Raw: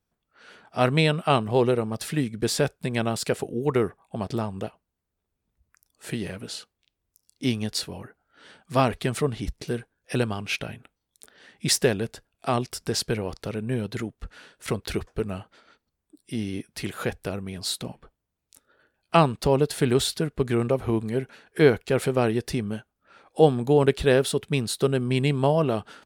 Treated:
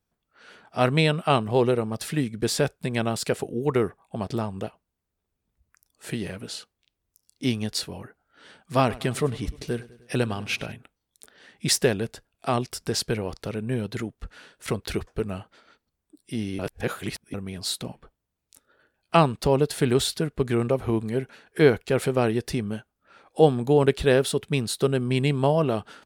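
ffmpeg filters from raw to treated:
-filter_complex "[0:a]asettb=1/sr,asplit=3[s0][s1][s2];[s0]atrim=end=8.804[s3];[s1]atrim=start=8.8:end=10.72,asetpts=PTS-STARTPTS,afade=t=in:d=0.004:c=qsin,afade=t=out:st=1.916:d=0.004:c=qsin,aecho=1:1:101|202|303|404|505:0.112|0.064|0.0365|0.0208|0.0118,atrim=end_sample=84672[s4];[s2]atrim=start=10.716[s5];[s3][s4]acrossfade=d=0.004:c1=hsin:c2=qsin[s6];[s6][s5]acrossfade=d=0.004:c1=qsin:c2=hsin,asplit=3[s7][s8][s9];[s7]atrim=end=16.592[s10];[s8]atrim=start=16.588:end=17.342,asetpts=PTS-STARTPTS,areverse[s11];[s9]atrim=start=17.338[s12];[s10][s11]acrossfade=d=0.004:c1=hsin:c2=hsin[s13];[s13][s12]acrossfade=d=0.004:c1=hsin:c2=hsin"

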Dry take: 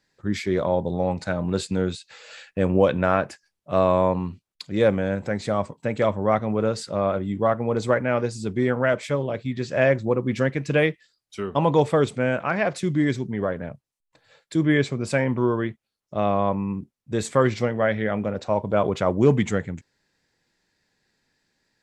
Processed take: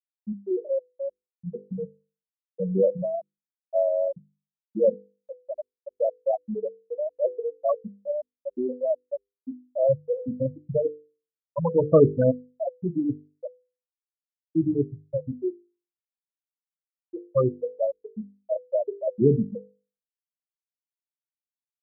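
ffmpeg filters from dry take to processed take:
-filter_complex "[0:a]asettb=1/sr,asplit=3[s0][s1][s2];[s0]atrim=end=11.914[s3];[s1]atrim=start=11.91:end=12.31,asetpts=PTS-STARTPTS,afade=t=in:d=0.004:c=qsin,afade=t=out:st=0.396:d=0.004:c=qsin,acontrast=78[s4];[s2]atrim=start=12.306[s5];[s3][s4]acrossfade=d=0.004:c1=hsin:c2=qsin[s6];[s6][s5]acrossfade=d=0.004:c1=qsin:c2=hsin,asettb=1/sr,asplit=3[s7][s8][s9];[s7]atrim=end=15.034[s10];[s8]atrim=start=15.03:end=17.33,asetpts=PTS-STARTPTS,afade=t=in:d=0.004:c=qsin,afade=t=out:st=2.296:d=0.004:c=qsin,adynamicequalizer=threshold=0.0178:dfrequency=470:dqfactor=0.82:tfrequency=470:tqfactor=0.82:attack=5:release=100:ratio=0.375:range=2.5:mode=cutabove:tftype=bell[s11];[s9]atrim=start=17.326[s12];[s10][s11]acrossfade=d=0.004:c1=hsin:c2=qsin[s13];[s13][s12]acrossfade=d=0.004:c1=qsin:c2=hsin,asplit=3[s14][s15][s16];[s14]atrim=end=6.682[s17];[s15]atrim=start=6.678:end=8.492,asetpts=PTS-STARTPTS,areverse[s18];[s16]atrim=start=8.488[s19];[s17][s18]acrossfade=d=0.004:c1=hsin:c2=hsin[s20];[s20][s19]acrossfade=d=0.004:c1=hsin:c2=hsin,lowpass=f=2500:p=1,afftfilt=real='re*gte(hypot(re,im),0.631)':imag='im*gte(hypot(re,im),0.631)':win_size=1024:overlap=0.75,bandreject=f=50:t=h:w=6,bandreject=f=100:t=h:w=6,bandreject=f=150:t=h:w=6,bandreject=f=200:t=h:w=6,bandreject=f=250:t=h:w=6,bandreject=f=300:t=h:w=6,bandreject=f=350:t=h:w=6,bandreject=f=400:t=h:w=6,bandreject=f=450:t=h:w=6,bandreject=f=500:t=h:w=6"

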